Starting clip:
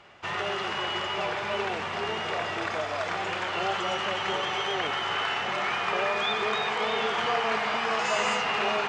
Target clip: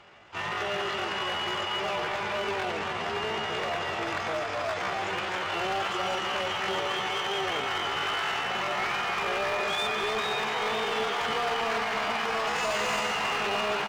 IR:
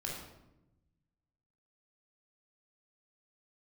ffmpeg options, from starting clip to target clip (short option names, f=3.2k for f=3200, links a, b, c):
-filter_complex "[0:a]asoftclip=type=hard:threshold=-25dB,atempo=0.64,asplit=2[a][b];[b]aecho=0:1:277:0.398[c];[a][c]amix=inputs=2:normalize=0"